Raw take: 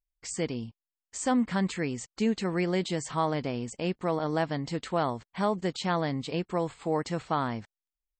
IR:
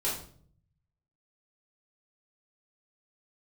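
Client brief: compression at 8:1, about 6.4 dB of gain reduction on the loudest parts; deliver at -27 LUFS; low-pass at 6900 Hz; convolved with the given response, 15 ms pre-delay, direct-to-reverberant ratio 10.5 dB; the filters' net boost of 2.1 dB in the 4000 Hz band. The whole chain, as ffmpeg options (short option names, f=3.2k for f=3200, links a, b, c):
-filter_complex "[0:a]lowpass=6.9k,equalizer=f=4k:t=o:g=3,acompressor=threshold=-28dB:ratio=8,asplit=2[a][b];[1:a]atrim=start_sample=2205,adelay=15[c];[b][c]afir=irnorm=-1:irlink=0,volume=-17dB[d];[a][d]amix=inputs=2:normalize=0,volume=7dB"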